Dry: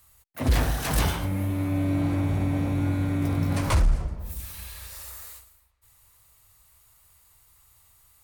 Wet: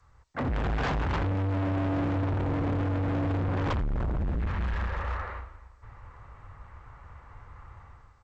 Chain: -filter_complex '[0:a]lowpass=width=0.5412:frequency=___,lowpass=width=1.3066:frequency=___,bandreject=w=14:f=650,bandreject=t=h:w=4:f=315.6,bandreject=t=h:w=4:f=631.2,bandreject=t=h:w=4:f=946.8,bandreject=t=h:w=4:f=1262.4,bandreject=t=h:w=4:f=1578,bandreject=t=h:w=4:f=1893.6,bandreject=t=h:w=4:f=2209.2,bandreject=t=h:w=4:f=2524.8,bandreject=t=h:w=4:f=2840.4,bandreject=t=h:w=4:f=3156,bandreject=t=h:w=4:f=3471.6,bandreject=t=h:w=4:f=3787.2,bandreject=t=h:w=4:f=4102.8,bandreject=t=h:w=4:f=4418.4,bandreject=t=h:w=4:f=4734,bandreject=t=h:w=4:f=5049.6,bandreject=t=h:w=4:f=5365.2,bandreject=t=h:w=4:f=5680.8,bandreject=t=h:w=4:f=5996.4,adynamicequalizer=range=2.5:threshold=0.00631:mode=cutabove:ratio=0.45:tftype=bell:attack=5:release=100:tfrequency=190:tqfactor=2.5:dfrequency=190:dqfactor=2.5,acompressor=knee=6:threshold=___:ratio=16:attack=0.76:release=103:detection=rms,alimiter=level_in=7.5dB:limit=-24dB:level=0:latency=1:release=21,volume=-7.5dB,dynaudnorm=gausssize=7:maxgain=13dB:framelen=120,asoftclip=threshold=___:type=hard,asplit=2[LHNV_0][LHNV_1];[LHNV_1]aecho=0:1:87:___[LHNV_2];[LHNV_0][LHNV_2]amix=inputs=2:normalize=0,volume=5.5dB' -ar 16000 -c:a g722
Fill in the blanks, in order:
1700, 1700, -28dB, -32dB, 0.0668